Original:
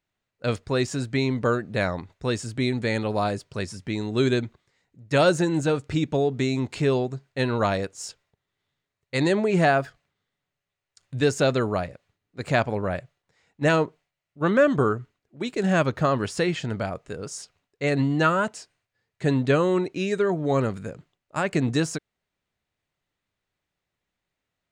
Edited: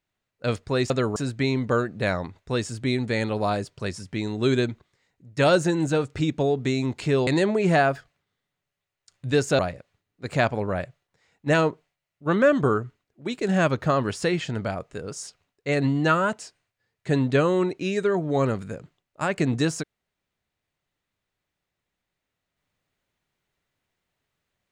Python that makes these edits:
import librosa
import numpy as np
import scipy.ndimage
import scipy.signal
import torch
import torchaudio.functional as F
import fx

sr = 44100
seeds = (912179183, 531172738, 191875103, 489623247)

y = fx.edit(x, sr, fx.cut(start_s=7.01, length_s=2.15),
    fx.move(start_s=11.48, length_s=0.26, to_s=0.9), tone=tone)